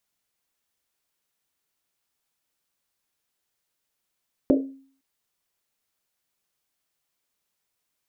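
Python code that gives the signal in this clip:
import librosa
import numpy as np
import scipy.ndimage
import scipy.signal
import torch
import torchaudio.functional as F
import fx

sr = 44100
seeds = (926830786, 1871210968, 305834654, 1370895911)

y = fx.risset_drum(sr, seeds[0], length_s=0.51, hz=270.0, decay_s=0.51, noise_hz=450.0, noise_width_hz=270.0, noise_pct=35)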